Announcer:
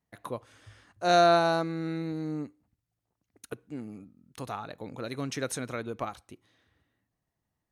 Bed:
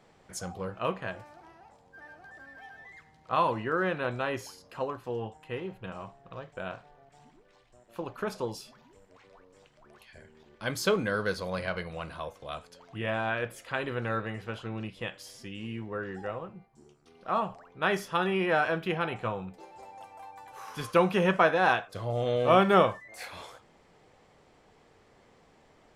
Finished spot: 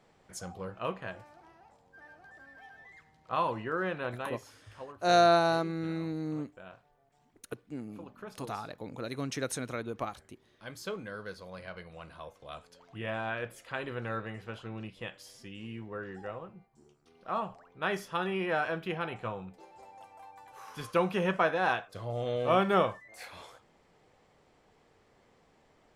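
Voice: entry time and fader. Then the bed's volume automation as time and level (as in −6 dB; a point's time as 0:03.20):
4.00 s, −1.5 dB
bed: 0:04.07 −4 dB
0:04.54 −12 dB
0:11.53 −12 dB
0:12.75 −4.5 dB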